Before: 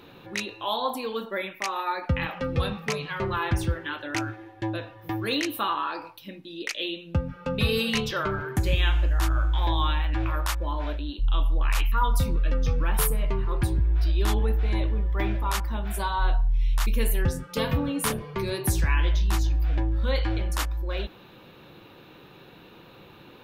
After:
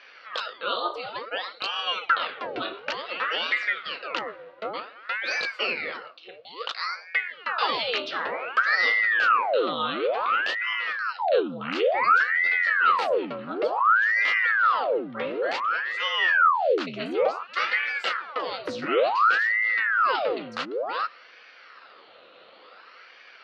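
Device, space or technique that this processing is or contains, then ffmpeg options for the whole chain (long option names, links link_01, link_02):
voice changer toy: -af "aeval=exprs='val(0)*sin(2*PI*1100*n/s+1100*0.85/0.56*sin(2*PI*0.56*n/s))':channel_layout=same,highpass=420,equalizer=frequency=500:width_type=q:width=4:gain=9,equalizer=frequency=870:width_type=q:width=4:gain=-4,equalizer=frequency=1300:width_type=q:width=4:gain=8,equalizer=frequency=2800:width_type=q:width=4:gain=5,equalizer=frequency=4400:width_type=q:width=4:gain=6,lowpass=frequency=4600:width=0.5412,lowpass=frequency=4600:width=1.3066"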